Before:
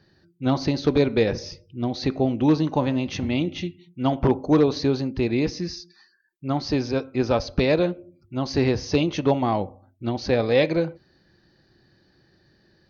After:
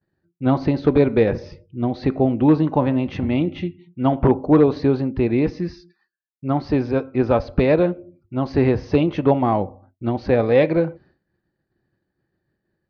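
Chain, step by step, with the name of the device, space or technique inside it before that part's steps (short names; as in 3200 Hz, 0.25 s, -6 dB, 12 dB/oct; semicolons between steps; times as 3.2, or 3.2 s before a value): hearing-loss simulation (LPF 2000 Hz 12 dB/oct; expander -49 dBFS); gain +4 dB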